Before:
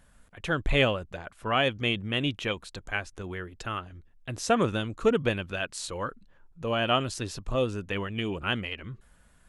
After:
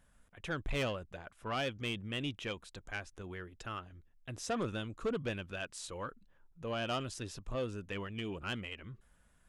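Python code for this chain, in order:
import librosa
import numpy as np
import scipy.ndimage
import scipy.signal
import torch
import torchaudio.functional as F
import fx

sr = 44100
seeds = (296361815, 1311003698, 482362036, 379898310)

y = fx.notch(x, sr, hz=4300.0, q=17.0)
y = 10.0 ** (-20.5 / 20.0) * np.tanh(y / 10.0 ** (-20.5 / 20.0))
y = F.gain(torch.from_numpy(y), -8.0).numpy()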